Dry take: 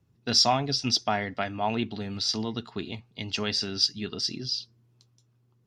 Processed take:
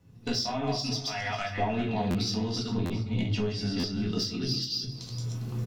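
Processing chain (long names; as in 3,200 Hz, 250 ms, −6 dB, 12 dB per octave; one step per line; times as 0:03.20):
delay that plays each chunk backwards 202 ms, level −4.5 dB
camcorder AGC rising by 18 dB per second
0:02.69–0:04.12: spectral tilt −2 dB per octave
harmonic and percussive parts rebalanced harmonic +5 dB
0:00.95–0:01.58: guitar amp tone stack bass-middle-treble 10-0-10
downward compressor 16 to 1, threshold −32 dBFS, peak gain reduction 20 dB
sine wavefolder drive 4 dB, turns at −19 dBFS
single-tap delay 404 ms −15.5 dB
convolution reverb RT60 0.35 s, pre-delay 4 ms, DRR −1.5 dB
buffer that repeats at 0:02.10/0:02.85/0:03.79, samples 512, times 3
level −6.5 dB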